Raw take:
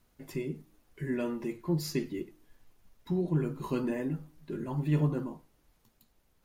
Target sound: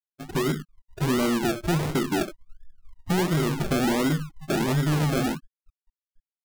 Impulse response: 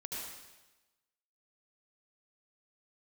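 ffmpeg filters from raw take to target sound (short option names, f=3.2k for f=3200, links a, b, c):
-filter_complex "[0:a]afftfilt=real='re*gte(hypot(re,im),0.01)':imag='im*gte(hypot(re,im),0.01)':win_size=1024:overlap=0.75,acrossover=split=540|7200[a][b][c];[a]acompressor=threshold=-32dB:ratio=4[d];[b]acompressor=threshold=-43dB:ratio=4[e];[c]acompressor=threshold=-58dB:ratio=4[f];[d][e][f]amix=inputs=3:normalize=0,acrusher=samples=36:mix=1:aa=0.000001:lfo=1:lforange=21.6:lforate=1.4,asoftclip=type=tanh:threshold=-35dB,dynaudnorm=f=180:g=3:m=13.5dB,volume=2.5dB"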